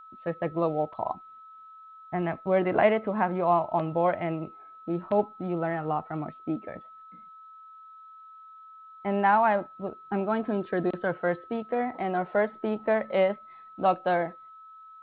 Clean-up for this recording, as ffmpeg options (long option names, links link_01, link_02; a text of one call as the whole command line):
ffmpeg -i in.wav -af "bandreject=frequency=1300:width=30,agate=range=-21dB:threshold=-41dB" out.wav